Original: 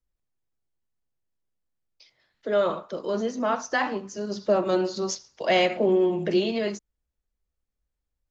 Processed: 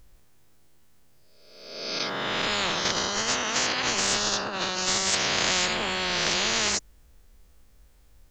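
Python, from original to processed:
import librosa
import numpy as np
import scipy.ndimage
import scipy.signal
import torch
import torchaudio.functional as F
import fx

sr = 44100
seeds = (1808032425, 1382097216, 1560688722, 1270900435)

y = fx.spec_swells(x, sr, rise_s=1.02)
y = fx.over_compress(y, sr, threshold_db=-32.0, ratio=-1.0, at=(2.85, 5.15))
y = fx.spectral_comp(y, sr, ratio=10.0)
y = y * librosa.db_to_amplitude(-1.0)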